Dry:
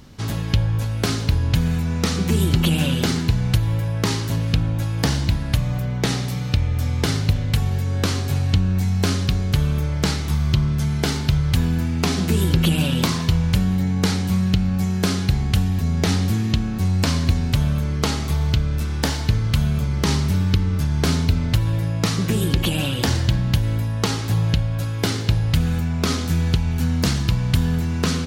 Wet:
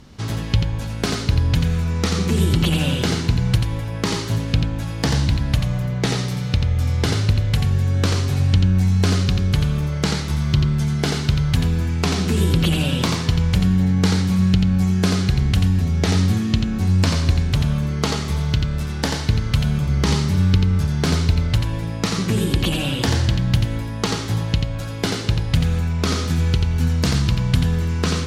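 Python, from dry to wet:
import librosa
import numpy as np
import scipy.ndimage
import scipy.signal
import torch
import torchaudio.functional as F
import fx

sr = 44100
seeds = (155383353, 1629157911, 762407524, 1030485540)

y = scipy.signal.sosfilt(scipy.signal.bessel(2, 10000.0, 'lowpass', norm='mag', fs=sr, output='sos'), x)
y = y + 10.0 ** (-5.5 / 20.0) * np.pad(y, (int(87 * sr / 1000.0), 0))[:len(y)]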